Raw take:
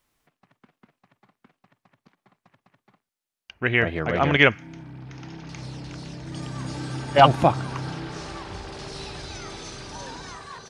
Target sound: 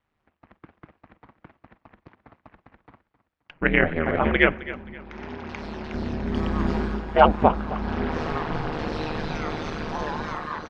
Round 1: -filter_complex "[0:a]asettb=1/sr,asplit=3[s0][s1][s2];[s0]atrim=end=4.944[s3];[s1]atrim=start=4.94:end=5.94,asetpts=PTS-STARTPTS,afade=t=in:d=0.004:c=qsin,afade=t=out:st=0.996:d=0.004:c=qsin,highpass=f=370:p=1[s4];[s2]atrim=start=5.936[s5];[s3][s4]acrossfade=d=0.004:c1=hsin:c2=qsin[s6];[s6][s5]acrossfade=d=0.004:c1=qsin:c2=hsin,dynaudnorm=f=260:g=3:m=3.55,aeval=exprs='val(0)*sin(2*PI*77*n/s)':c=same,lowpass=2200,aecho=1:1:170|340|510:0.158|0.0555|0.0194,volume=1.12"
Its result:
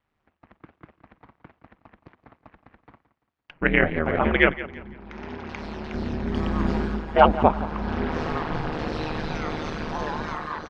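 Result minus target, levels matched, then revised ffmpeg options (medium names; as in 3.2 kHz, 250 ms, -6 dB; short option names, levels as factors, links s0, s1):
echo 93 ms early
-filter_complex "[0:a]asettb=1/sr,asplit=3[s0][s1][s2];[s0]atrim=end=4.944[s3];[s1]atrim=start=4.94:end=5.94,asetpts=PTS-STARTPTS,afade=t=in:d=0.004:c=qsin,afade=t=out:st=0.996:d=0.004:c=qsin,highpass=f=370:p=1[s4];[s2]atrim=start=5.936[s5];[s3][s4]acrossfade=d=0.004:c1=hsin:c2=qsin[s6];[s6][s5]acrossfade=d=0.004:c1=qsin:c2=hsin,dynaudnorm=f=260:g=3:m=3.55,aeval=exprs='val(0)*sin(2*PI*77*n/s)':c=same,lowpass=2200,aecho=1:1:263|526|789:0.158|0.0555|0.0194,volume=1.12"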